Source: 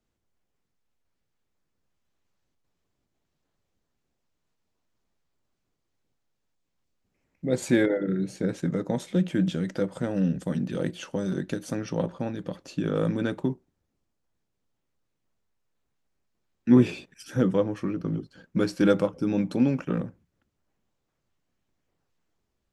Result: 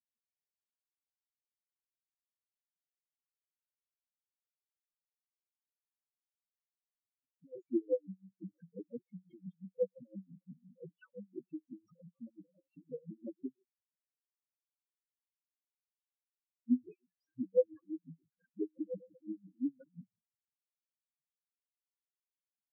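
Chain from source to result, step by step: loudest bins only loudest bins 2; ladder band-pass 590 Hz, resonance 20%; dB-linear tremolo 5.8 Hz, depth 33 dB; gain +10.5 dB

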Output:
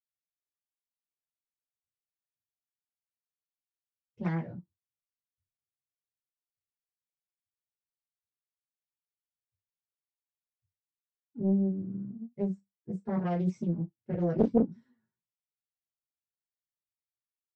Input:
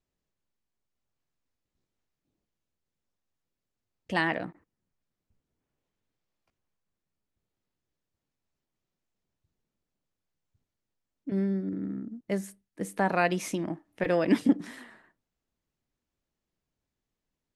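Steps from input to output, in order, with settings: per-bin expansion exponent 1.5; sample leveller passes 1; reverb, pre-delay 76 ms; Doppler distortion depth 0.98 ms

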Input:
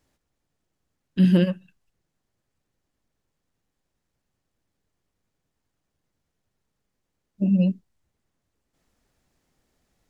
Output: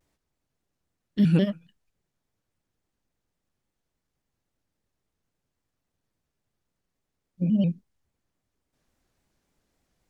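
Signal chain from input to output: shaped vibrato square 3.6 Hz, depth 160 cents; gain -3 dB

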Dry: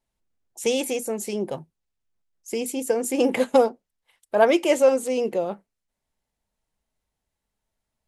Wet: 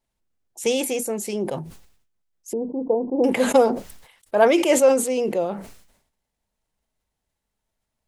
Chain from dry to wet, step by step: 2.53–3.24 brick-wall FIR low-pass 1100 Hz; sustainer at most 81 dB/s; gain +1 dB

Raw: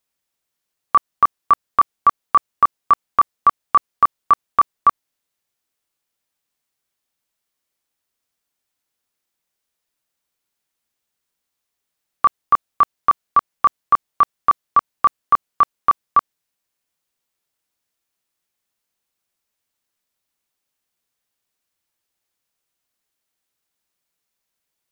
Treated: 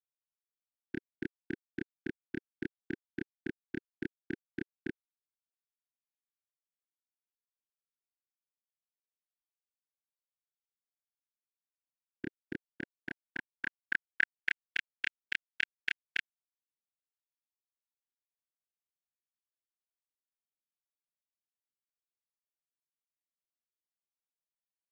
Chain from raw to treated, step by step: brick-wall FIR band-stop 360–1500 Hz; sample gate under -44 dBFS; band-pass sweep 420 Hz -> 2600 Hz, 12.47–14.7; gain +11.5 dB

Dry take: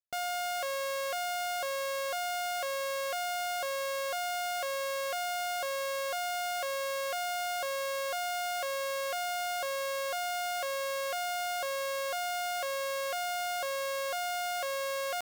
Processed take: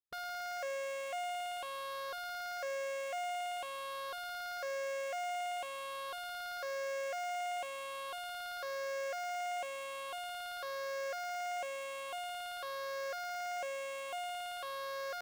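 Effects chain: moving spectral ripple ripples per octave 0.62, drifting +0.47 Hz, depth 9 dB; high shelf 4000 Hz -7 dB; Doppler distortion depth 0.22 ms; gain -6.5 dB

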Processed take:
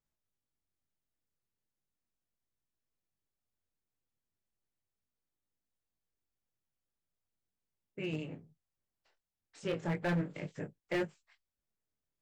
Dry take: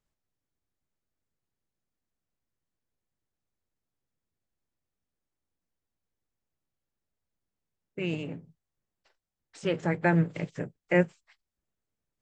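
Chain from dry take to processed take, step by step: chorus 0.37 Hz, delay 19.5 ms, depth 5.5 ms; overloaded stage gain 25 dB; gain -3 dB

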